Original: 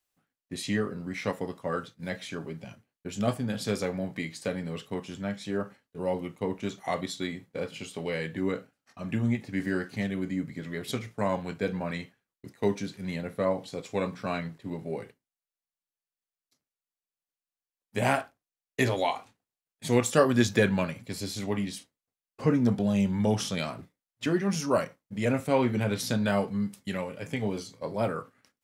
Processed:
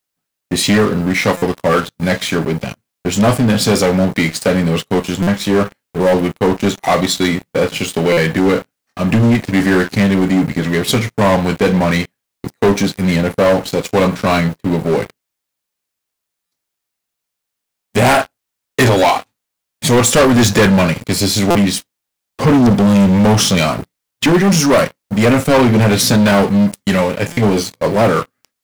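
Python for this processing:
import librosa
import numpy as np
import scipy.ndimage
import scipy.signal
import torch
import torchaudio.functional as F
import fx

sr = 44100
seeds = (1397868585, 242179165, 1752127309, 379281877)

y = fx.quant_dither(x, sr, seeds[0], bits=12, dither='triangular')
y = fx.leveller(y, sr, passes=5)
y = fx.buffer_glitch(y, sr, at_s=(1.37, 5.22, 8.12, 16.46, 21.5, 27.32), block=256, repeats=8)
y = y * 10.0 ** (3.0 / 20.0)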